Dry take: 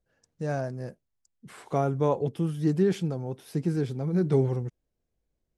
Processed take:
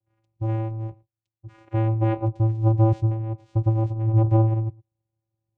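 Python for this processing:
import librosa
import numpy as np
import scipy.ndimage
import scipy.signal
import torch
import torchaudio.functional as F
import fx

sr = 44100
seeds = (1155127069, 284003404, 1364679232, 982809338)

p1 = fx.lowpass(x, sr, hz=3000.0, slope=6)
p2 = fx.vocoder(p1, sr, bands=4, carrier='square', carrier_hz=111.0)
p3 = p2 + fx.echo_single(p2, sr, ms=112, db=-24.0, dry=0)
y = p3 * 10.0 ** (6.5 / 20.0)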